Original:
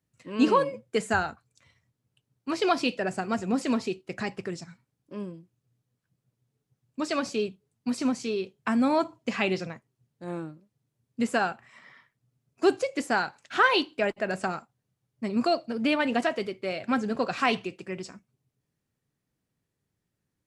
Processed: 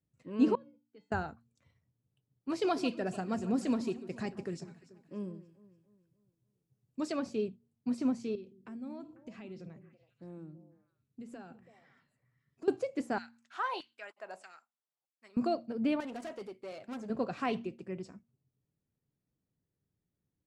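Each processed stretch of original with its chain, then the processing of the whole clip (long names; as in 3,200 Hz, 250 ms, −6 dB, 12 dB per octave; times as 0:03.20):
0:00.55–0:01.12: transistor ladder low-pass 5,000 Hz, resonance 35% + tuned comb filter 290 Hz, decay 0.38 s, harmonics odd, mix 90%
0:02.50–0:07.12: high-shelf EQ 3,500 Hz +9 dB + delay that swaps between a low-pass and a high-pass 145 ms, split 1,500 Hz, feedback 64%, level −13.5 dB
0:08.35–0:12.68: parametric band 980 Hz −5.5 dB 1.9 octaves + downward compressor 3 to 1, threshold −41 dBFS + echo through a band-pass that steps 165 ms, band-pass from 220 Hz, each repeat 1.4 octaves, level −8 dB
0:13.18–0:15.37: parametric band 1,600 Hz −9 dB 2.1 octaves + auto-filter high-pass saw down 1.6 Hz 770–2,100 Hz
0:16.00–0:17.10: tube saturation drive 29 dB, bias 0.45 + high-pass filter 360 Hz 6 dB per octave + high-shelf EQ 5,400 Hz +8.5 dB
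whole clip: tilt shelving filter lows +6.5 dB, about 850 Hz; hum removal 116.6 Hz, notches 2; level −9 dB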